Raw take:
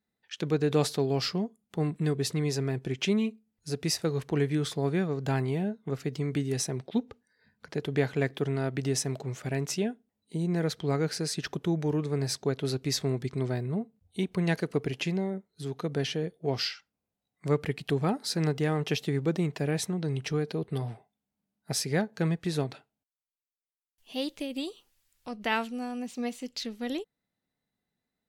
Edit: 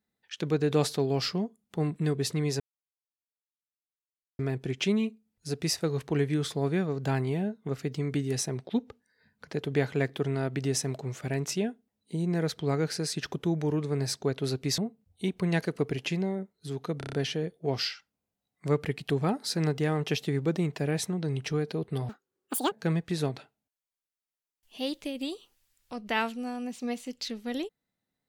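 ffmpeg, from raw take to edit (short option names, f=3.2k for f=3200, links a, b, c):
-filter_complex "[0:a]asplit=10[a][b][c][d][e][f][g][h][i][j];[a]atrim=end=2.6,asetpts=PTS-STARTPTS,afade=t=out:st=2.596:d=0.004:c=hsin,apad=pad_dur=1.79[k];[b]atrim=start=2.6:end=12.992,asetpts=PTS-STARTPTS,afade=t=in:d=0.004:c=hsin[l];[c]atrim=start=13.728:end=15.962[m];[d]atrim=start=15.928:end=15.962[n];[e]atrim=start=15.928:end=15.962[o];[f]atrim=start=15.928:end=15.962[p];[g]atrim=start=15.928:end=15.962[q];[h]atrim=start=15.928:end=20.894[r];[i]atrim=start=20.89:end=22.07,asetpts=PTS-STARTPTS,asetrate=82908,aresample=44100[s];[j]atrim=start=22.066[t];[k][l]concat=n=2:v=0:a=1[u];[u][m]acrossfade=d=0.004:c1=hsin:c2=hsin[v];[v][n]acrossfade=d=0.004:c1=hsin:c2=hsin[w];[w][o]acrossfade=d=0.004:c1=hsin:c2=hsin[x];[x][p]acrossfade=d=0.004:c1=hsin:c2=hsin[y];[y][q]acrossfade=d=0.004:c1=hsin:c2=hsin[z];[z][r]acrossfade=d=0.004:c1=hsin:c2=hsin[aa];[aa][s]acrossfade=d=0.004:c1=hsin:c2=hsin[ab];[ab][t]acrossfade=d=0.004:c1=hsin:c2=hsin"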